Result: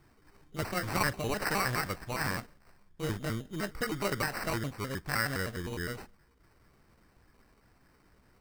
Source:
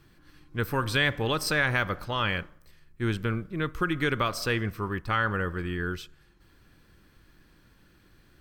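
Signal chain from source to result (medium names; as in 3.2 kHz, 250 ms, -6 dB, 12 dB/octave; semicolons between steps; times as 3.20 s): pitch shift switched off and on +5 st, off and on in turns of 103 ms; treble shelf 9.2 kHz +10.5 dB; sample-and-hold 13×; trim -5 dB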